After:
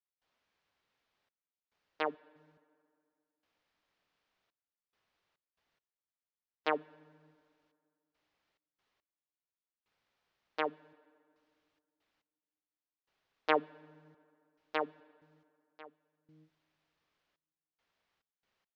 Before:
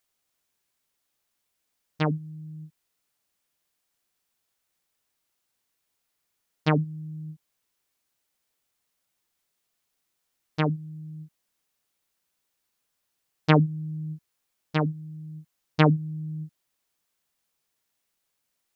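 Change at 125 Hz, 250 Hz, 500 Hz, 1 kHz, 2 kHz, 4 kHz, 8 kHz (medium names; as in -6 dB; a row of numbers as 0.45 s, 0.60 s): -38.5 dB, -19.5 dB, -7.0 dB, -6.0 dB, -6.5 dB, -9.0 dB, no reading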